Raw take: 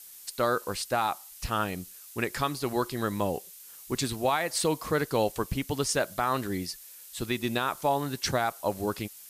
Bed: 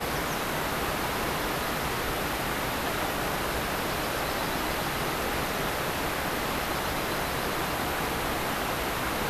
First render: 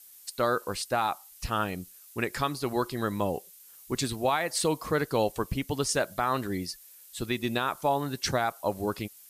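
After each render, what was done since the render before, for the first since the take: noise reduction 6 dB, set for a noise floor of -48 dBFS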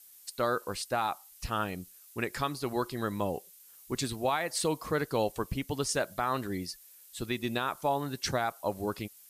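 trim -3 dB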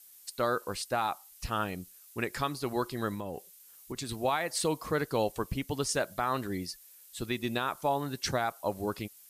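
3.14–4.09 s: compression, threshold -33 dBFS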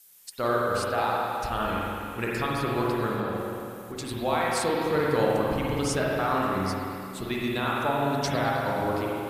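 spring tank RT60 2.8 s, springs 42/53 ms, chirp 65 ms, DRR -5 dB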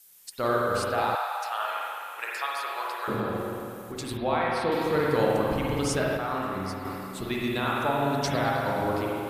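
1.15–3.08 s: high-pass 680 Hz 24 dB/octave; 4.17–4.72 s: boxcar filter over 6 samples; 6.17–6.85 s: gain -4.5 dB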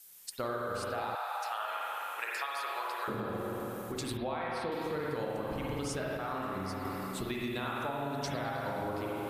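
compression 6:1, threshold -33 dBFS, peak gain reduction 14 dB; attacks held to a fixed rise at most 520 dB/s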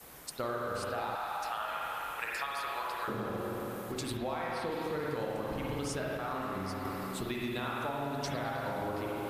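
add bed -24.5 dB

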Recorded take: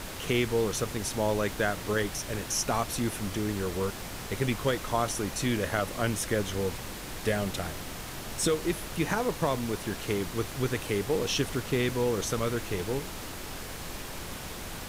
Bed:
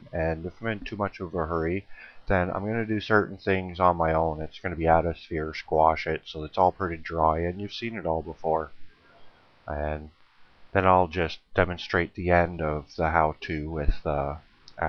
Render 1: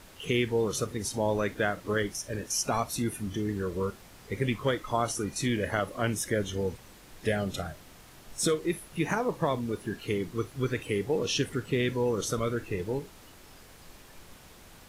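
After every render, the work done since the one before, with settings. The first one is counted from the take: noise print and reduce 13 dB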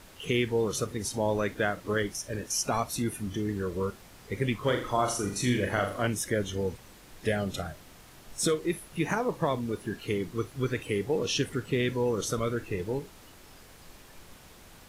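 4.59–6.07 s: flutter echo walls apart 6.9 m, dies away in 0.42 s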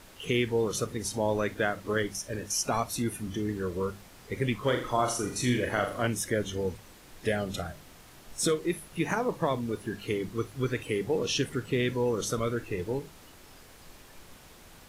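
hum notches 50/100/150/200 Hz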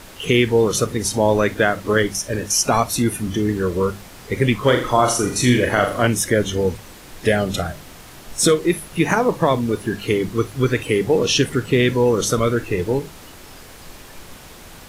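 trim +11.5 dB; peak limiter -3 dBFS, peak gain reduction 1.5 dB

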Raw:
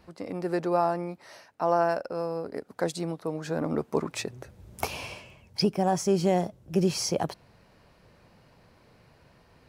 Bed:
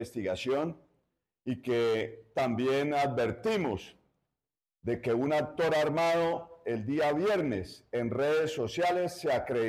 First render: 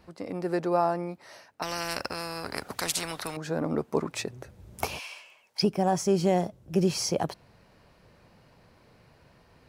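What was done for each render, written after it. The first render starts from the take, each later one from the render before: 1.62–3.37 s: spectrum-flattening compressor 4:1; 4.98–5.62 s: high-pass 1.4 kHz -> 620 Hz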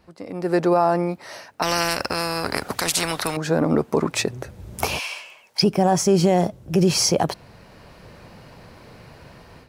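level rider gain up to 13.5 dB; peak limiter -8 dBFS, peak gain reduction 6 dB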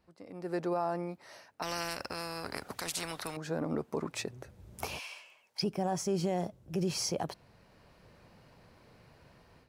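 trim -14.5 dB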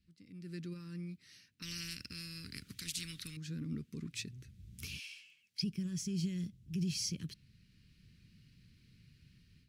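Chebyshev band-stop 180–3000 Hz, order 2; treble shelf 4.9 kHz -5 dB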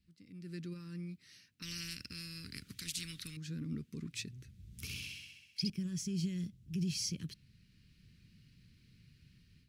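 4.65–5.70 s: flutter echo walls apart 11.1 m, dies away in 1 s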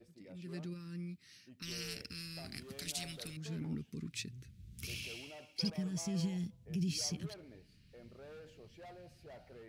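add bed -25 dB

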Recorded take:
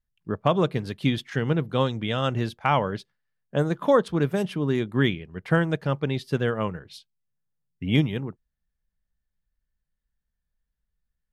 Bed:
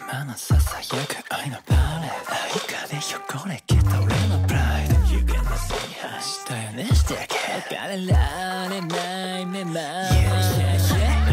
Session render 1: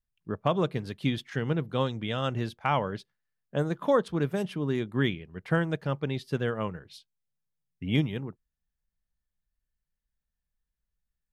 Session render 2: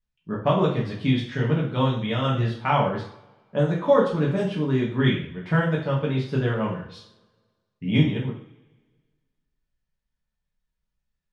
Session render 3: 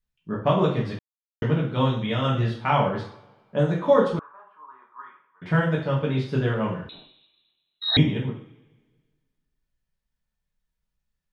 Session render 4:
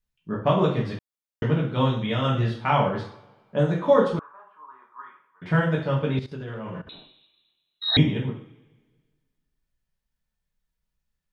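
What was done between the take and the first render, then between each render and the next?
trim -4.5 dB
distance through air 90 m; two-slope reverb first 0.48 s, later 1.6 s, from -22 dB, DRR -4.5 dB
0.99–1.42 s: mute; 4.19–5.42 s: Butterworth band-pass 1.1 kHz, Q 3.5; 6.89–7.97 s: frequency inversion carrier 4 kHz
6.19–6.87 s: level held to a coarse grid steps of 17 dB

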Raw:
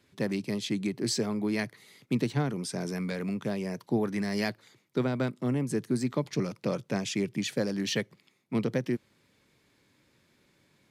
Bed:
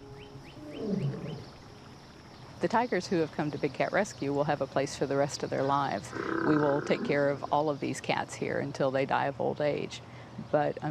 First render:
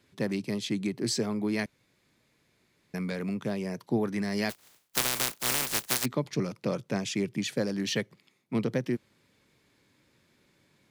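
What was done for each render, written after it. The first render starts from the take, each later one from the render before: 1.66–2.94 s: room tone; 4.49–6.04 s: spectral contrast reduction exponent 0.13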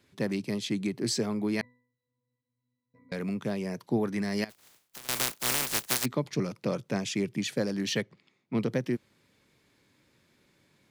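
1.61–3.12 s: pitch-class resonator B, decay 0.56 s; 4.44–5.09 s: compression, threshold -43 dBFS; 8.02–8.58 s: distance through air 88 m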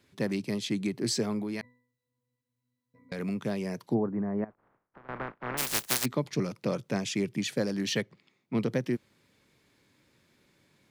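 1.39–3.19 s: compression 4:1, threshold -31 dBFS; 3.93–5.57 s: low-pass 1.1 kHz -> 1.8 kHz 24 dB/octave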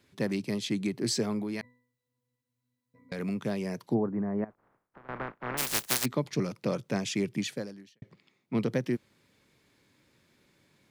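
7.40–8.02 s: fade out quadratic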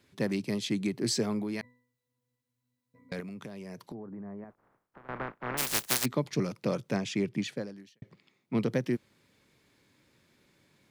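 3.20–4.45 s: compression 16:1, threshold -38 dBFS; 6.96–7.76 s: low-pass 3.8 kHz 6 dB/octave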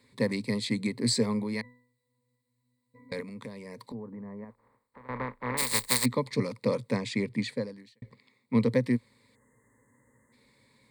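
9.35–10.33 s: spectral selection erased 2.1–6.2 kHz; rippled EQ curve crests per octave 0.97, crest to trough 13 dB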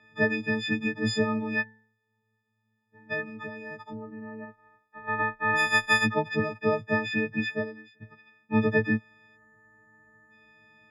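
partials quantised in pitch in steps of 6 st; resonant low-pass 1.9 kHz, resonance Q 1.8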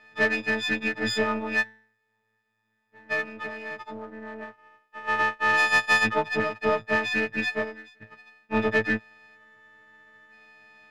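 partial rectifier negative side -7 dB; overdrive pedal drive 14 dB, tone 3.9 kHz, clips at -10 dBFS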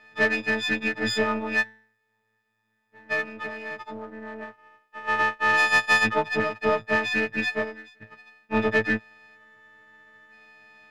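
trim +1 dB

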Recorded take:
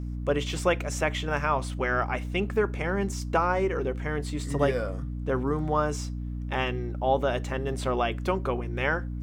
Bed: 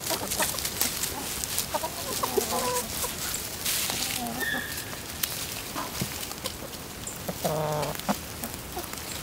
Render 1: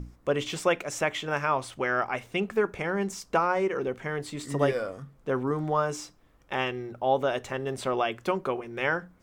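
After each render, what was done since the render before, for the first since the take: hum notches 60/120/180/240/300 Hz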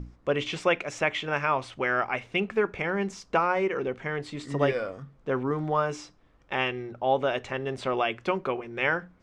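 low-pass 5.2 kHz 12 dB/octave; dynamic bell 2.4 kHz, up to +5 dB, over -47 dBFS, Q 2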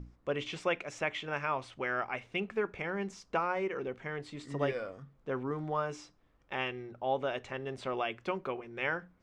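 trim -7.5 dB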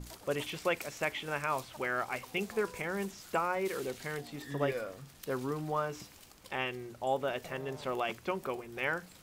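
add bed -21.5 dB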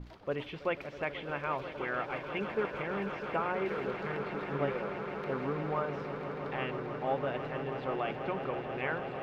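distance through air 320 m; echo with a slow build-up 162 ms, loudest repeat 8, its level -13 dB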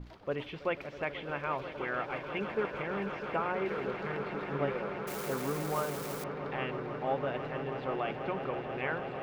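5.07–6.24 s: zero-crossing glitches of -31 dBFS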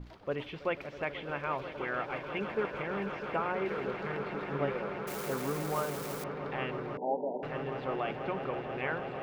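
6.97–7.43 s: brick-wall FIR band-pass 170–1000 Hz

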